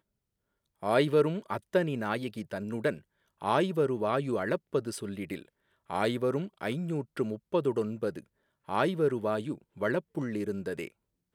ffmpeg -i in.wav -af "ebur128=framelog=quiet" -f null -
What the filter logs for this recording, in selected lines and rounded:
Integrated loudness:
  I:         -31.2 LUFS
  Threshold: -41.6 LUFS
Loudness range:
  LRA:         2.6 LU
  Threshold: -51.8 LUFS
  LRA low:   -33.0 LUFS
  LRA high:  -30.4 LUFS